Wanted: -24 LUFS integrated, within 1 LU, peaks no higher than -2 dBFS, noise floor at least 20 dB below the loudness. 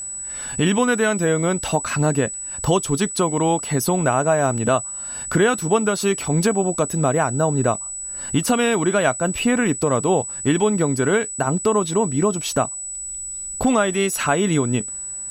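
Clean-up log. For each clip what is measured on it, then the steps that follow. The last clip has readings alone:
steady tone 7.9 kHz; tone level -28 dBFS; loudness -20.5 LUFS; peak level -5.5 dBFS; loudness target -24.0 LUFS
-> band-stop 7.9 kHz, Q 30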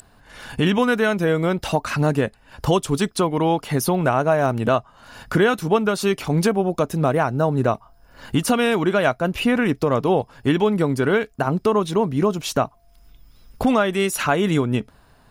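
steady tone not found; loudness -20.5 LUFS; peak level -6.0 dBFS; loudness target -24.0 LUFS
-> trim -3.5 dB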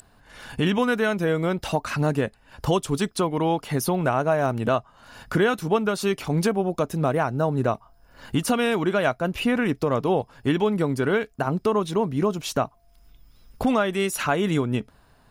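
loudness -24.0 LUFS; peak level -9.5 dBFS; noise floor -57 dBFS

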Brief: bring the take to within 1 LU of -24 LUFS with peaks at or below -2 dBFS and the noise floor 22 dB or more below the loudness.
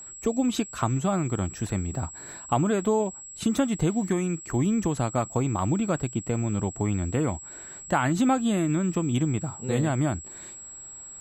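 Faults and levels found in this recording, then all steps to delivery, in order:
steady tone 7.7 kHz; tone level -40 dBFS; loudness -26.5 LUFS; peak level -10.5 dBFS; loudness target -24.0 LUFS
-> band-stop 7.7 kHz, Q 30; trim +2.5 dB

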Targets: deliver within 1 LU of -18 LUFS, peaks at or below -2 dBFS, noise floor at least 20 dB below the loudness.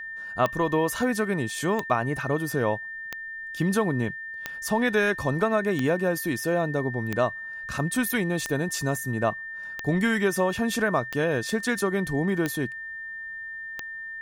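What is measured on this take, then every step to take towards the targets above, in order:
clicks found 11; steady tone 1.8 kHz; tone level -34 dBFS; loudness -26.5 LUFS; peak level -9.5 dBFS; loudness target -18.0 LUFS
-> de-click; band-stop 1.8 kHz, Q 30; trim +8.5 dB; peak limiter -2 dBFS

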